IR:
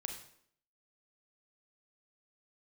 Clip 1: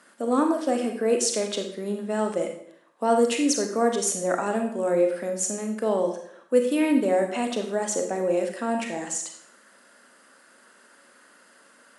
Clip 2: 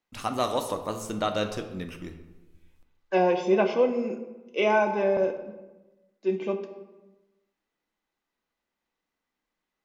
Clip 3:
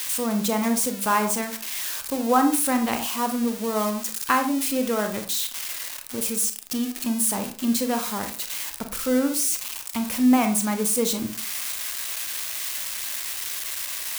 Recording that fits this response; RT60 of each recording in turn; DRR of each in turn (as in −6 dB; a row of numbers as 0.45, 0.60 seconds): 1; 0.65, 1.1, 0.40 seconds; 3.5, 5.5, 6.0 decibels